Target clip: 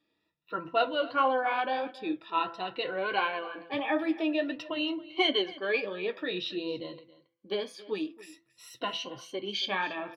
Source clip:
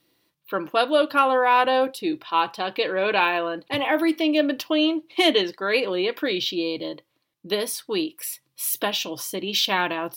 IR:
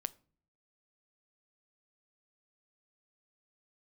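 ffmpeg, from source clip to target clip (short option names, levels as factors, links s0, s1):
-filter_complex "[0:a]afftfilt=real='re*pow(10,15/40*sin(2*PI*(2*log(max(b,1)*sr/1024/100)/log(2)-(0.5)*(pts-256)/sr)))':imag='im*pow(10,15/40*sin(2*PI*(2*log(max(b,1)*sr/1024/100)/log(2)-(0.5)*(pts-256)/sr)))':win_size=1024:overlap=0.75,lowpass=3700,bandreject=f=167.4:t=h:w=4,bandreject=f=334.8:t=h:w=4,bandreject=f=502.2:t=h:w=4,bandreject=f=669.6:t=h:w=4,bandreject=f=837:t=h:w=4,bandreject=f=1004.4:t=h:w=4,bandreject=f=1171.8:t=h:w=4,bandreject=f=1339.2:t=h:w=4,bandreject=f=1506.6:t=h:w=4,bandreject=f=1674:t=h:w=4,bandreject=f=1841.4:t=h:w=4,bandreject=f=2008.8:t=h:w=4,bandreject=f=2176.2:t=h:w=4,flanger=delay=7.1:depth=5.2:regen=-53:speed=1.5:shape=sinusoidal,asplit=2[s0][s1];[s1]aecho=0:1:275:0.112[s2];[s0][s2]amix=inputs=2:normalize=0,volume=0.501"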